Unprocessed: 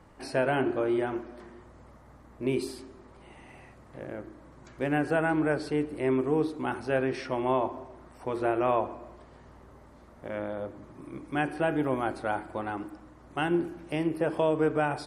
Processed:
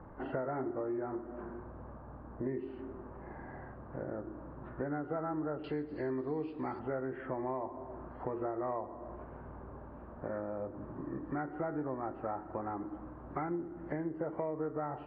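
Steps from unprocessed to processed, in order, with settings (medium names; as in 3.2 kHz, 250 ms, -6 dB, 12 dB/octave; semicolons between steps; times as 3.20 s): knee-point frequency compression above 1.1 kHz 1.5:1; low-pass 1.7 kHz 24 dB/octave, from 5.64 s 4.1 kHz, from 6.79 s 1.8 kHz; compression 4:1, threshold -41 dBFS, peak gain reduction 16.5 dB; trim +4.5 dB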